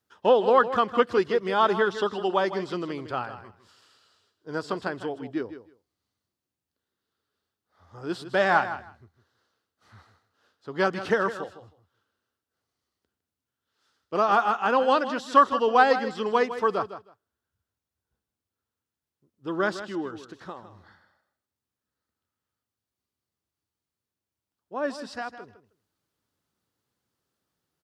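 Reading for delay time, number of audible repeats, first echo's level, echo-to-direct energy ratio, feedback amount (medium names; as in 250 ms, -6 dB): 157 ms, 2, -12.0 dB, -12.0 dB, 16%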